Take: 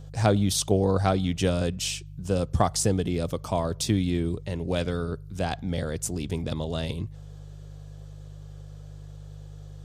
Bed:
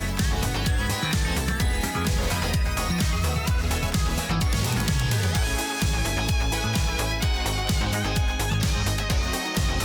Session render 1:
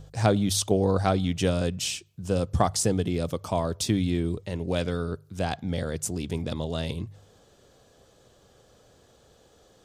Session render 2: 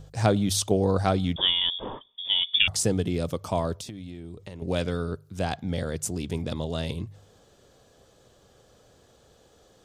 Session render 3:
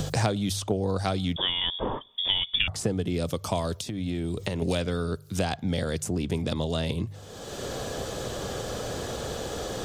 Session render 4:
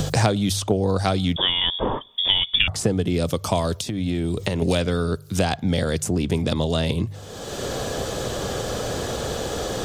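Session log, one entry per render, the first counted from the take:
de-hum 50 Hz, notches 3
1.36–2.68 inverted band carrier 3500 Hz; 3.77–4.62 compressor 8:1, threshold -35 dBFS
three-band squash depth 100%
gain +6 dB

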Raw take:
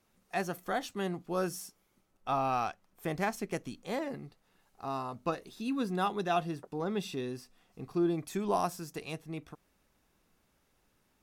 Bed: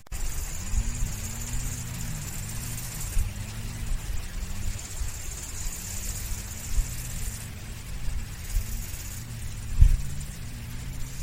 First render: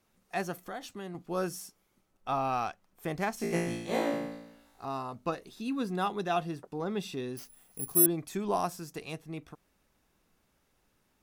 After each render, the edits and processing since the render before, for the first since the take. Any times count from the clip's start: 0.62–1.15 compressor 2:1, threshold -41 dBFS; 3.38–4.85 flutter echo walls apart 3 m, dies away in 0.89 s; 7.37–8.06 careless resampling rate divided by 4×, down none, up zero stuff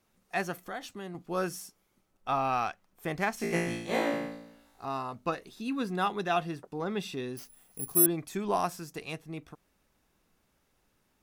dynamic EQ 2000 Hz, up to +5 dB, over -47 dBFS, Q 0.82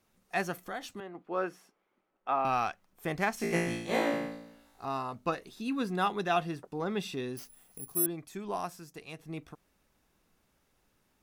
1–2.45 three-band isolator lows -19 dB, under 250 Hz, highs -21 dB, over 2900 Hz; 7.79–9.19 gain -6.5 dB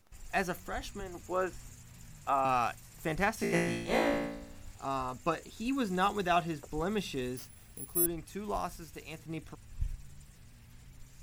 add bed -18.5 dB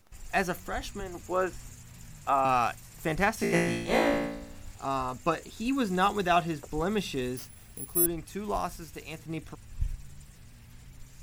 gain +4 dB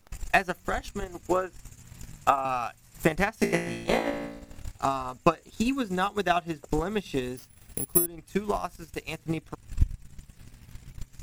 compressor 2:1, threshold -29 dBFS, peak gain reduction 6.5 dB; transient shaper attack +12 dB, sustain -9 dB

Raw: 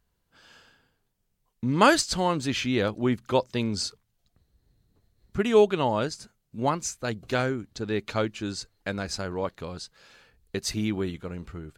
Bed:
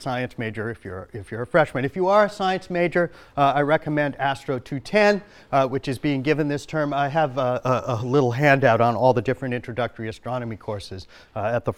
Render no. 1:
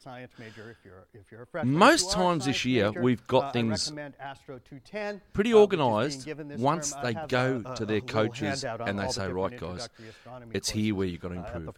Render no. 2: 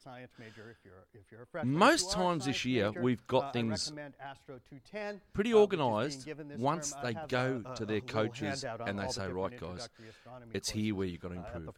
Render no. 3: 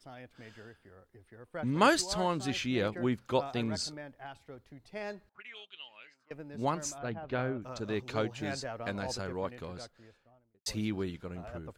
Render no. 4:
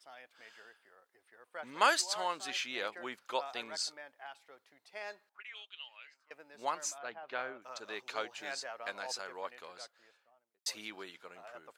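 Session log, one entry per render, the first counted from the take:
add bed -17 dB
gain -6 dB
5.29–6.31 auto-wah 800–3100 Hz, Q 7.6, up, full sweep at -25 dBFS; 6.98–7.62 air absorption 350 m; 9.6–10.66 studio fade out
HPF 780 Hz 12 dB/oct

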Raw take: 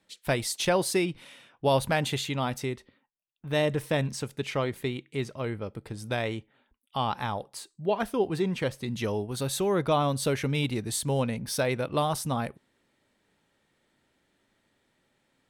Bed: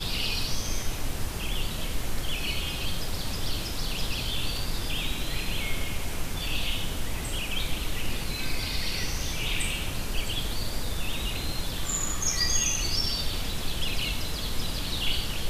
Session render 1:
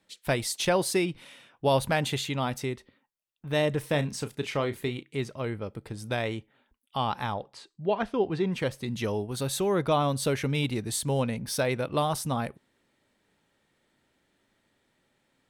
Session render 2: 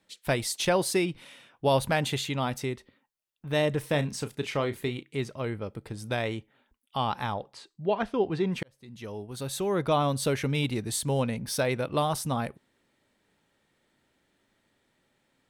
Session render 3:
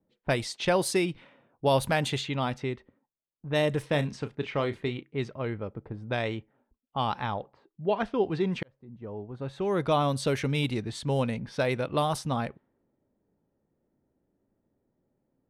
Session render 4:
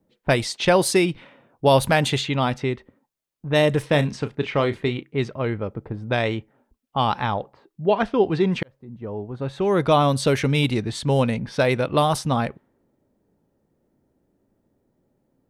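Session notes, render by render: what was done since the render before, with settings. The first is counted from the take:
3.86–5.03 doubler 34 ms -11.5 dB; 7.34–8.52 LPF 4300 Hz
8.63–9.96 fade in
low-pass opened by the level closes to 520 Hz, open at -22.5 dBFS
gain +7.5 dB

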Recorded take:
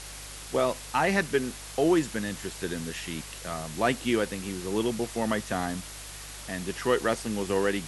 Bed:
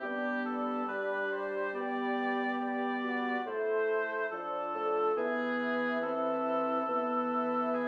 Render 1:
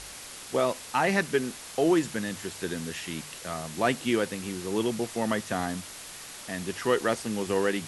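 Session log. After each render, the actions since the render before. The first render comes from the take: de-hum 50 Hz, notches 3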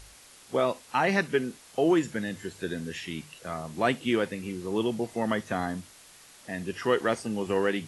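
noise print and reduce 10 dB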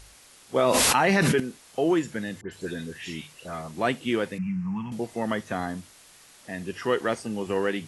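0.56–1.4 fast leveller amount 100%; 2.41–3.72 dispersion highs, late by 0.112 s, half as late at 2400 Hz; 4.38–4.92 EQ curve 110 Hz 0 dB, 180 Hz +13 dB, 380 Hz -30 dB, 570 Hz -25 dB, 870 Hz -1 dB, 2500 Hz -1 dB, 3600 Hz -26 dB, 5500 Hz -13 dB, 13000 Hz -27 dB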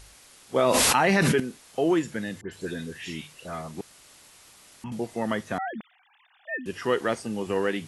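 3.81–4.84 room tone; 5.58–6.66 sine-wave speech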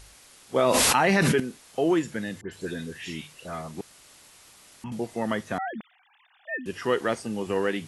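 nothing audible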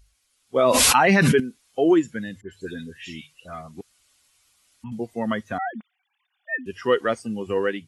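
per-bin expansion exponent 1.5; AGC gain up to 7 dB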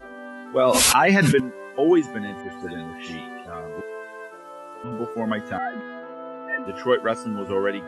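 add bed -4.5 dB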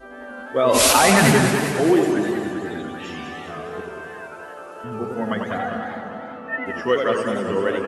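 on a send: feedback echo 0.2 s, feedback 60%, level -7 dB; on the sum: warbling echo 90 ms, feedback 66%, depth 198 cents, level -6 dB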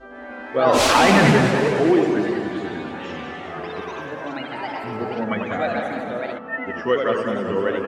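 air absorption 110 m; echoes that change speed 0.145 s, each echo +4 st, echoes 3, each echo -6 dB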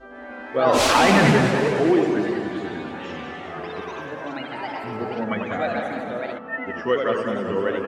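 gain -1.5 dB

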